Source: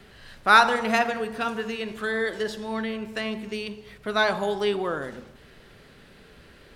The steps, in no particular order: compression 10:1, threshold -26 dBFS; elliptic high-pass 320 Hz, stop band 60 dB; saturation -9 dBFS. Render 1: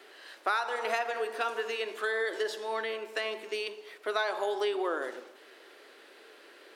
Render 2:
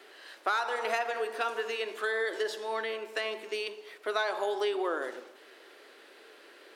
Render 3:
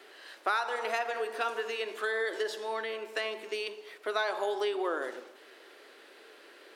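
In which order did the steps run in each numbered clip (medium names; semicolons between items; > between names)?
elliptic high-pass > compression > saturation; saturation > elliptic high-pass > compression; compression > saturation > elliptic high-pass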